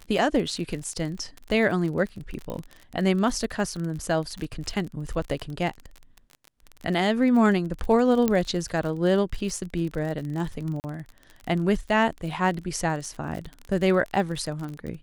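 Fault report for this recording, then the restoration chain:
crackle 35/s -31 dBFS
2.5 pop -20 dBFS
8.28 pop -10 dBFS
10.8–10.84 gap 39 ms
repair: de-click; interpolate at 10.8, 39 ms

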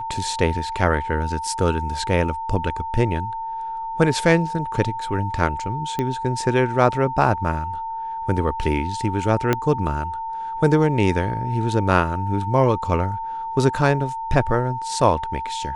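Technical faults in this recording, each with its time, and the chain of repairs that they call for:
tone 900 Hz -26 dBFS
5.99 pop -11 dBFS
9.53 pop -5 dBFS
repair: de-click; notch 900 Hz, Q 30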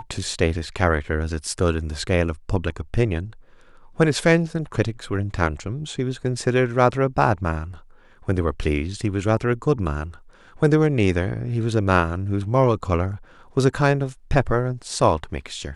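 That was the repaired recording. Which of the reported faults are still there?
5.99 pop
9.53 pop

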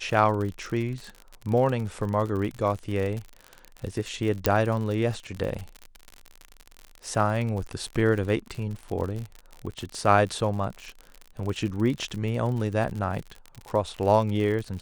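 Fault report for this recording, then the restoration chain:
crackle 55/s -31 dBFS
4.46 pop -5 dBFS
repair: de-click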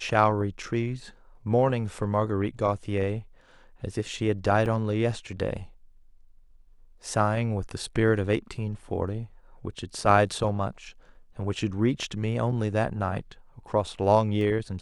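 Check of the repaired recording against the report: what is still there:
4.46 pop

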